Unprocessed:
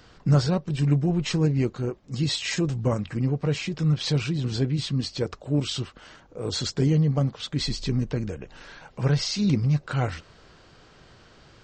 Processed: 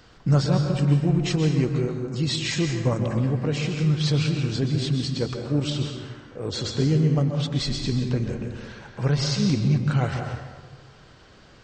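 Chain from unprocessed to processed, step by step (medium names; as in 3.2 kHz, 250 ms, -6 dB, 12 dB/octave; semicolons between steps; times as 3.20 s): 5.69–6.72 s: low-pass 3.5 kHz -> 5.7 kHz 6 dB/octave; on a send: reverberation RT60 1.4 s, pre-delay 118 ms, DRR 3.5 dB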